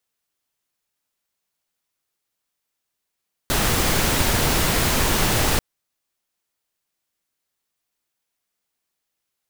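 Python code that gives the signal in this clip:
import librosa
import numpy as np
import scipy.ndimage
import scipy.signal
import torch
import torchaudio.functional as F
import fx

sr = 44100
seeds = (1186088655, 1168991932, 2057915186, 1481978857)

y = fx.noise_colour(sr, seeds[0], length_s=2.09, colour='pink', level_db=-19.5)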